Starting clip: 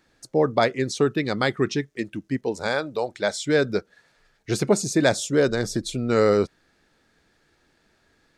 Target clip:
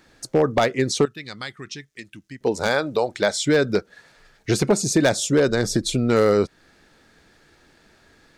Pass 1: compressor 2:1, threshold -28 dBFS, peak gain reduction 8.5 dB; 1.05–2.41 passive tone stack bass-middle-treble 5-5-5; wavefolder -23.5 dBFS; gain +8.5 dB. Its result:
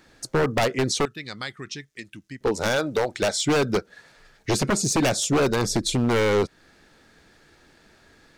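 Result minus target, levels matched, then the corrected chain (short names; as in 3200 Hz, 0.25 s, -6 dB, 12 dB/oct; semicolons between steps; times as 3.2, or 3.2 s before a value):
wavefolder: distortion +17 dB
compressor 2:1, threshold -28 dBFS, peak gain reduction 8.5 dB; 1.05–2.41 passive tone stack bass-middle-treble 5-5-5; wavefolder -17.5 dBFS; gain +8.5 dB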